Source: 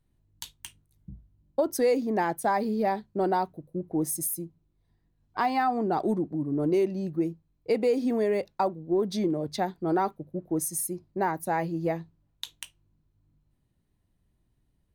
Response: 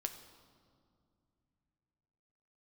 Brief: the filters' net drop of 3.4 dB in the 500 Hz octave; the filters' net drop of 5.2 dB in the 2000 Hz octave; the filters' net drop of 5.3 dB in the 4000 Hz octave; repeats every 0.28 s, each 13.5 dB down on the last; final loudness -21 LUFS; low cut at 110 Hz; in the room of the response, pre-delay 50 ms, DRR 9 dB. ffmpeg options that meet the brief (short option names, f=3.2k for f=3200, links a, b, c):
-filter_complex "[0:a]highpass=110,equalizer=f=500:t=o:g=-4,equalizer=f=2k:t=o:g=-5.5,equalizer=f=4k:t=o:g=-5,aecho=1:1:280|560:0.211|0.0444,asplit=2[a][b];[1:a]atrim=start_sample=2205,adelay=50[c];[b][c]afir=irnorm=-1:irlink=0,volume=-8dB[d];[a][d]amix=inputs=2:normalize=0,volume=9dB"